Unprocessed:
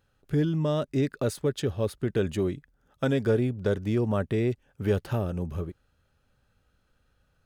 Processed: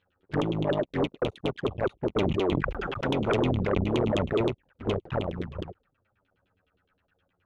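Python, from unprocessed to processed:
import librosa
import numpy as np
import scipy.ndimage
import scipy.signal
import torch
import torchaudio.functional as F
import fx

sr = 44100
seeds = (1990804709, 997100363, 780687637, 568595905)

y = fx.cycle_switch(x, sr, every=3, mode='muted')
y = fx.highpass(y, sr, hz=67.0, slope=6)
y = fx.high_shelf(y, sr, hz=4500.0, db=4.0)
y = fx.filter_lfo_lowpass(y, sr, shape='saw_down', hz=9.6, low_hz=300.0, high_hz=3400.0, q=5.4)
y = fx.env_flanger(y, sr, rest_ms=11.2, full_db=-23.0)
y = fx.fold_sine(y, sr, drive_db=3, ceiling_db=-13.0)
y = fx.sustainer(y, sr, db_per_s=21.0, at=(2.16, 4.41), fade=0.02)
y = y * librosa.db_to_amplitude(-7.0)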